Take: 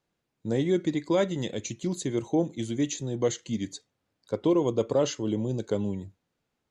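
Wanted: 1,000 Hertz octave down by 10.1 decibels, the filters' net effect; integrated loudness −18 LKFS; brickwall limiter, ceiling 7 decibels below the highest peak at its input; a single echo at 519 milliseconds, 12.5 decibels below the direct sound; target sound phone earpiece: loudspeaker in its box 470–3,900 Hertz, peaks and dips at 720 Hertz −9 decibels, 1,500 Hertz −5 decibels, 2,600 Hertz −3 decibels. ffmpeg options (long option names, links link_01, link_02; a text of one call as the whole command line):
ffmpeg -i in.wav -af "equalizer=frequency=1000:width_type=o:gain=-7.5,alimiter=limit=-22.5dB:level=0:latency=1,highpass=470,equalizer=frequency=720:width_type=q:width=4:gain=-9,equalizer=frequency=1500:width_type=q:width=4:gain=-5,equalizer=frequency=2600:width_type=q:width=4:gain=-3,lowpass=frequency=3900:width=0.5412,lowpass=frequency=3900:width=1.3066,aecho=1:1:519:0.237,volume=22.5dB" out.wav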